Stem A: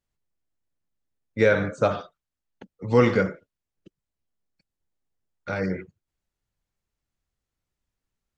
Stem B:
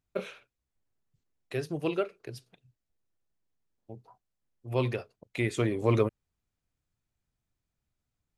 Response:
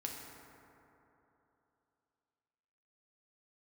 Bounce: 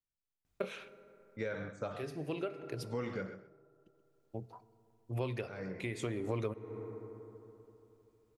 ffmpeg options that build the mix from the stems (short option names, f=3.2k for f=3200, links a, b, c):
-filter_complex "[0:a]volume=-15.5dB,asplit=3[a][b][c];[b]volume=-13dB[d];[1:a]adelay=450,volume=2.5dB,asplit=2[e][f];[f]volume=-14dB[g];[c]apad=whole_len=389275[h];[e][h]sidechaincompress=threshold=-56dB:ratio=4:attack=16:release=601[i];[2:a]atrim=start_sample=2205[j];[g][j]afir=irnorm=-1:irlink=0[k];[d]aecho=0:1:129|258|387:1|0.17|0.0289[l];[a][i][k][l]amix=inputs=4:normalize=0,acompressor=threshold=-34dB:ratio=5"